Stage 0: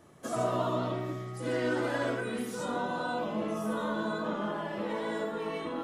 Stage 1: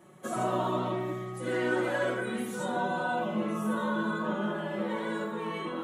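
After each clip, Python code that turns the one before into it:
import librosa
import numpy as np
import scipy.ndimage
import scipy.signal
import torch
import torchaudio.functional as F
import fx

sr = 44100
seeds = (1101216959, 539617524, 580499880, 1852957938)

y = scipy.signal.sosfilt(scipy.signal.butter(2, 83.0, 'highpass', fs=sr, output='sos'), x)
y = fx.peak_eq(y, sr, hz=5000.0, db=-10.5, octaves=0.43)
y = y + 0.77 * np.pad(y, (int(5.4 * sr / 1000.0), 0))[:len(y)]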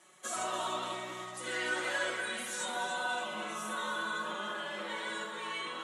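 y = fx.weighting(x, sr, curve='ITU-R 468')
y = fx.echo_feedback(y, sr, ms=291, feedback_pct=51, wet_db=-9.5)
y = y * librosa.db_to_amplitude(-4.0)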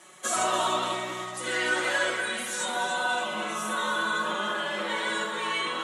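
y = fx.rider(x, sr, range_db=10, speed_s=2.0)
y = y * librosa.db_to_amplitude(7.5)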